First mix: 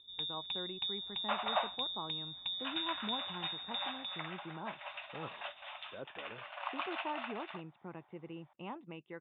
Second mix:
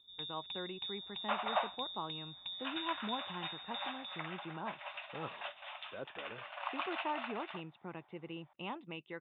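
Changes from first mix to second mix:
speech: remove high-frequency loss of the air 450 metres
first sound −5.0 dB

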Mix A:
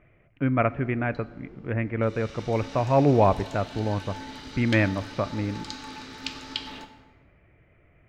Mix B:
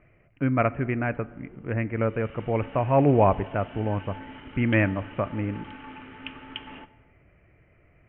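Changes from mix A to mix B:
background: send −8.5 dB
master: add Butterworth low-pass 3,100 Hz 96 dB per octave

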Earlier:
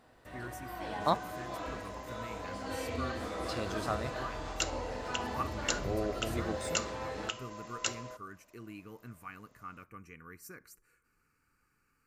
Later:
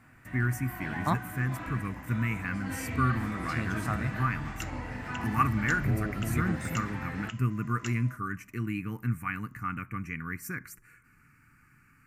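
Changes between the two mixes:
speech +9.5 dB
second sound −7.0 dB
master: add octave-band graphic EQ 125/250/500/2,000/4,000 Hz +11/+6/−11/+10/−9 dB

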